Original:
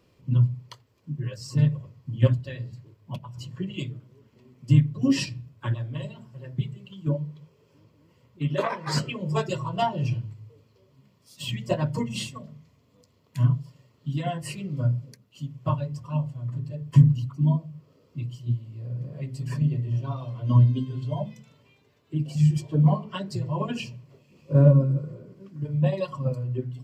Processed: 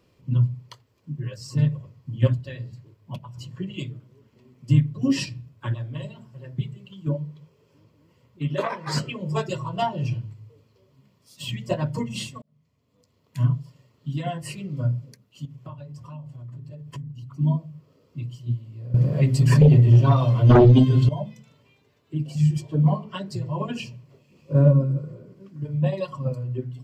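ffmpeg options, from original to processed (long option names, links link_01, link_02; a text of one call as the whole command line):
ffmpeg -i in.wav -filter_complex "[0:a]asettb=1/sr,asplit=3[link_01][link_02][link_03];[link_01]atrim=end=15.454[link_04];[link_02]atrim=start=15.45:end=17.32,asetpts=PTS-STARTPTS,afade=type=in:duration=0.004:curve=qsin,afade=type=out:start_time=1.866:duration=0.004:curve=qsin,acompressor=threshold=-37dB:ratio=4:attack=3.2:release=140:knee=1:detection=peak[link_05];[link_03]atrim=start=17.316[link_06];[link_04][link_05]acrossfade=duration=0.004:curve1=hsin:curve2=qsin[link_07];[link_07][link_06]acrossfade=duration=0.004:curve1=qsin:curve2=hsin,asettb=1/sr,asplit=3[link_08][link_09][link_10];[link_08]atrim=end=18.944[link_11];[link_09]atrim=start=18.94:end=21.09,asetpts=PTS-STARTPTS,afade=type=in:duration=0.004:curve=qsin,afade=type=out:start_time=2.146:duration=0.004:curve=qsin,aeval=exprs='0.376*sin(PI/2*3.55*val(0)/0.376)':channel_layout=same[link_12];[link_10]atrim=start=21.086[link_13];[link_11][link_12]acrossfade=duration=0.004:curve1=hsin:curve2=qsin[link_14];[link_14][link_13]acrossfade=duration=0.004:curve1=qsin:curve2=hsin,asplit=2[link_15][link_16];[link_15]atrim=end=12.42,asetpts=PTS-STARTPTS,afade=type=out:start_time=12.416:duration=0.004:curve=hsin[link_17];[link_16]atrim=start=12.42,asetpts=PTS-STARTPTS,afade=type=in:duration=0.97[link_18];[link_17][link_18]concat=n=2:v=0:a=1" out.wav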